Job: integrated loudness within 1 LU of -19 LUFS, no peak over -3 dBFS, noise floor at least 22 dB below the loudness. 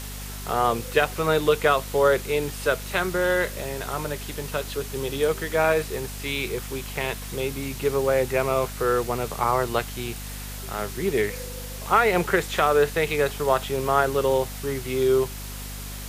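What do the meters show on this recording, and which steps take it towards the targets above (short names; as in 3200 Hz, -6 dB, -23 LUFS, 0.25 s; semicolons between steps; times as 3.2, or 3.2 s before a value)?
hum 50 Hz; harmonics up to 250 Hz; hum level -34 dBFS; noise floor -35 dBFS; noise floor target -47 dBFS; loudness -24.5 LUFS; peak -5.5 dBFS; loudness target -19.0 LUFS
-> de-hum 50 Hz, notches 5; denoiser 12 dB, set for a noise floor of -35 dBFS; gain +5.5 dB; limiter -3 dBFS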